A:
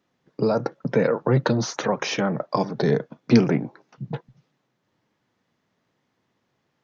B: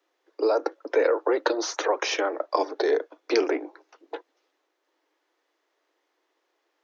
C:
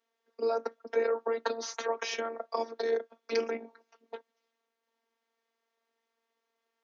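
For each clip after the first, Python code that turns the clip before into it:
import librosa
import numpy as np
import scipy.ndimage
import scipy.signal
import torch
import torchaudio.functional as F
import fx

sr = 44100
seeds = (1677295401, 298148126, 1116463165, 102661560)

y1 = scipy.signal.sosfilt(scipy.signal.butter(16, 300.0, 'highpass', fs=sr, output='sos'), x)
y2 = fx.robotise(y1, sr, hz=229.0)
y2 = y2 * librosa.db_to_amplitude(-5.5)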